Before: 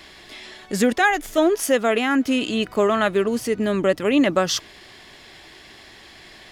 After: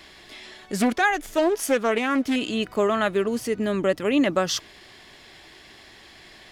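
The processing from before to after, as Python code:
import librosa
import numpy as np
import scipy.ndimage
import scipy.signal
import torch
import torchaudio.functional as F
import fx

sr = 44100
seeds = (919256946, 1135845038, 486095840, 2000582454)

y = fx.doppler_dist(x, sr, depth_ms=0.34, at=(0.78, 2.36))
y = F.gain(torch.from_numpy(y), -3.0).numpy()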